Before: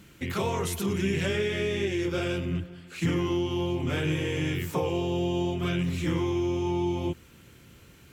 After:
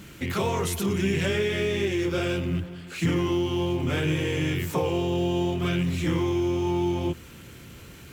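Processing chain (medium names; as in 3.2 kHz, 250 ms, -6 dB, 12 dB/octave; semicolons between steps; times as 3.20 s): companding laws mixed up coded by mu; trim +1.5 dB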